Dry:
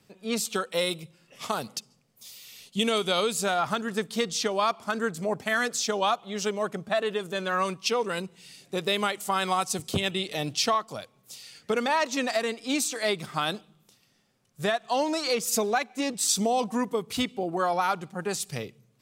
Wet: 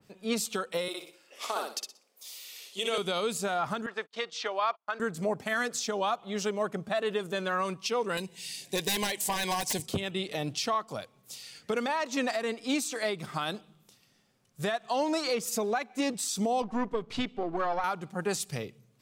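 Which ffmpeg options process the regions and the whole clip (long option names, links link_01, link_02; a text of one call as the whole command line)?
ffmpeg -i in.wav -filter_complex "[0:a]asettb=1/sr,asplit=3[link_01][link_02][link_03];[link_01]atrim=end=0.884[link_04];[link_02]atrim=start=0.88:end=2.98,asetpts=PTS-STARTPTS,afade=type=in:duration=0.004:curve=qsin,afade=type=out:start_time=2.096:duration=0.004:curve=qsin,highpass=frequency=340:width=0.5412,highpass=frequency=340:width=1.3066,aecho=1:1:61|122|183|244:0.668|0.167|0.0418|0.0104,atrim=end_sample=92610[link_05];[link_03]atrim=start=2.976[link_06];[link_04][link_05]acrossfade=duration=0.004:curve1=hsin:curve2=qsin[link_07];[link_07][link_06]acrossfade=duration=0.004:curve1=qsin:curve2=hsin,asettb=1/sr,asplit=3[link_08][link_09][link_10];[link_08]atrim=end=3.864[link_11];[link_09]atrim=start=3.86:end=5,asetpts=PTS-STARTPTS,afade=type=in:duration=0.004:curve=qsin,afade=type=out:start_time=1.136:duration=0.004:curve=qsin,agate=range=-39dB:threshold=-38dB:ratio=16:release=100:detection=peak,highpass=650,lowpass=3500[link_12];[link_10]atrim=start=4.996[link_13];[link_11][link_12]acrossfade=duration=0.004:curve1=hsin:curve2=qsin[link_14];[link_14][link_13]acrossfade=duration=0.004:curve1=qsin:curve2=hsin,asettb=1/sr,asplit=3[link_15][link_16][link_17];[link_15]atrim=end=8.174[link_18];[link_16]atrim=start=8.17:end=9.86,asetpts=PTS-STARTPTS,afade=type=in:duration=0.004:curve=qsin,afade=type=out:start_time=1.686:duration=0.004:curve=qsin,highshelf=frequency=2000:gain=11.5,aeval=exprs='0.119*(abs(mod(val(0)/0.119+3,4)-2)-1)':channel_layout=same,asuperstop=centerf=1300:order=4:qfactor=3.1[link_19];[link_17]atrim=start=9.856[link_20];[link_18][link_19]acrossfade=duration=0.004:curve1=hsin:curve2=qsin[link_21];[link_21][link_20]acrossfade=duration=0.004:curve1=qsin:curve2=hsin,asettb=1/sr,asplit=3[link_22][link_23][link_24];[link_22]atrim=end=16.624[link_25];[link_23]atrim=start=16.62:end=17.84,asetpts=PTS-STARTPTS,afade=type=in:duration=0.004:curve=qsin,afade=type=out:start_time=1.216:duration=0.004:curve=qsin,aeval=exprs='if(lt(val(0),0),0.447*val(0),val(0))':channel_layout=same,lowpass=4300[link_26];[link_24]atrim=start=17.836[link_27];[link_25][link_26]acrossfade=duration=0.004:curve1=hsin:curve2=qsin[link_28];[link_28][link_27]acrossfade=duration=0.004:curve1=qsin:curve2=hsin,alimiter=limit=-19dB:level=0:latency=1:release=173,adynamicequalizer=threshold=0.00708:dfrequency=2400:dqfactor=0.7:tfrequency=2400:tqfactor=0.7:attack=5:release=100:ratio=0.375:range=2.5:mode=cutabove:tftype=highshelf" out.wav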